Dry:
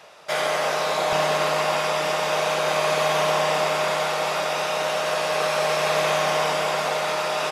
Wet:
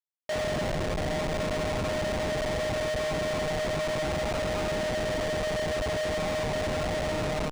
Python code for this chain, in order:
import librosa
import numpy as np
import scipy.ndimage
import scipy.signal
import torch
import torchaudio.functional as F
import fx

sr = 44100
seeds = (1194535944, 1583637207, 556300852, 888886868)

y = fx.spec_expand(x, sr, power=2.1)
y = fx.rider(y, sr, range_db=10, speed_s=0.5)
y = fx.echo_feedback(y, sr, ms=757, feedback_pct=33, wet_db=-19.0)
y = fx.schmitt(y, sr, flips_db=-21.5)
y = np.interp(np.arange(len(y)), np.arange(len(y))[::3], y[::3])
y = F.gain(torch.from_numpy(y), -6.0).numpy()